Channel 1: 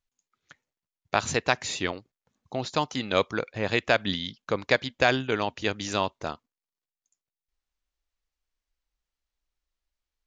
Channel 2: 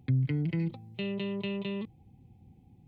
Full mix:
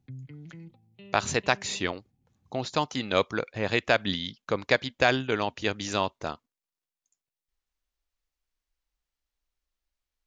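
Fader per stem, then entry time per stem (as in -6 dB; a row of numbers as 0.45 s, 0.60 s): -0.5 dB, -15.0 dB; 0.00 s, 0.00 s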